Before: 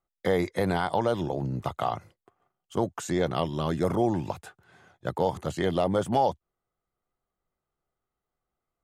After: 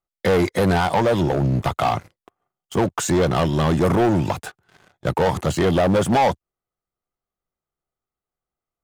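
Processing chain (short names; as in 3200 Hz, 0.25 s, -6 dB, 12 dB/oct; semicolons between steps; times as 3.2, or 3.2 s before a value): sample leveller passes 3; gain +1.5 dB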